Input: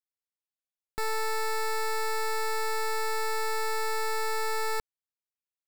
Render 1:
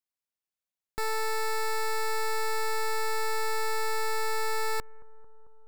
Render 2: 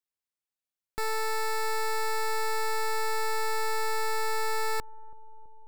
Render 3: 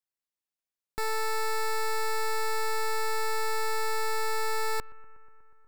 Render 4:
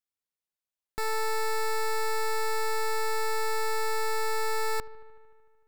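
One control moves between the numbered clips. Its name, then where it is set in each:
bucket-brigade delay, delay time: 222, 328, 121, 75 milliseconds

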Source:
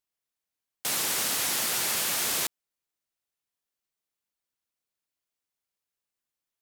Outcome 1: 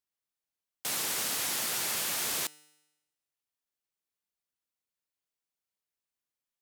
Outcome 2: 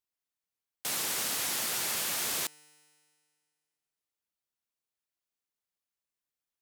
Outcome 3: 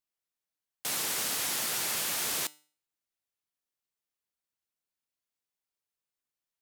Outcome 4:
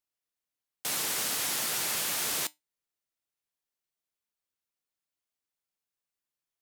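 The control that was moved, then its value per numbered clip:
tuned comb filter, decay: 0.98, 2.1, 0.42, 0.17 seconds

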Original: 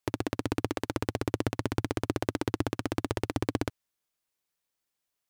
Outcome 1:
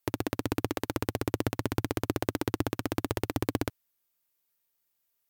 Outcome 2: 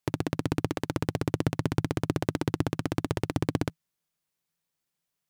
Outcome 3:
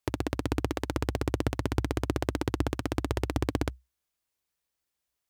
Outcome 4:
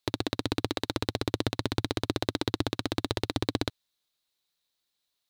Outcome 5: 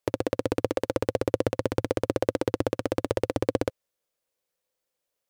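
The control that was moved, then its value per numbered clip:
parametric band, centre frequency: 15,000, 160, 63, 3,900, 520 Hertz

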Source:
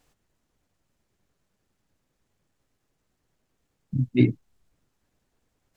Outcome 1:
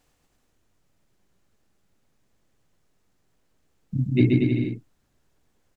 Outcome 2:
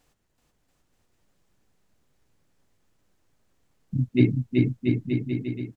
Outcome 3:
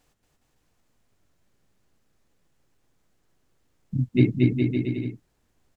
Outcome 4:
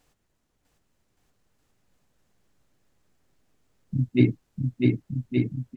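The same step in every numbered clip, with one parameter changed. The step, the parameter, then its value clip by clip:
bouncing-ball delay, first gap: 130, 380, 230, 650 milliseconds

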